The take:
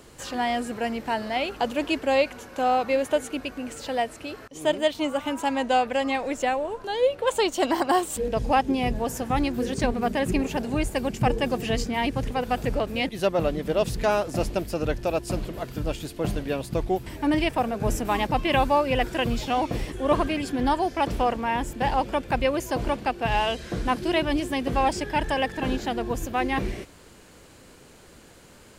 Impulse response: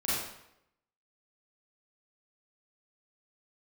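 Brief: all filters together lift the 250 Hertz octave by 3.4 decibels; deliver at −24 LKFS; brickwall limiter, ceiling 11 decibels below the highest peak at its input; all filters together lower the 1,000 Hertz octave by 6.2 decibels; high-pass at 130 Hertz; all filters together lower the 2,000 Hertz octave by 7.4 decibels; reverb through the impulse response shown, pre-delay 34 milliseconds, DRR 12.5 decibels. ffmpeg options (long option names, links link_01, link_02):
-filter_complex "[0:a]highpass=130,equalizer=frequency=250:width_type=o:gain=5,equalizer=frequency=1000:width_type=o:gain=-8,equalizer=frequency=2000:width_type=o:gain=-7.5,alimiter=limit=-21dB:level=0:latency=1,asplit=2[link_01][link_02];[1:a]atrim=start_sample=2205,adelay=34[link_03];[link_02][link_03]afir=irnorm=-1:irlink=0,volume=-20.5dB[link_04];[link_01][link_04]amix=inputs=2:normalize=0,volume=6dB"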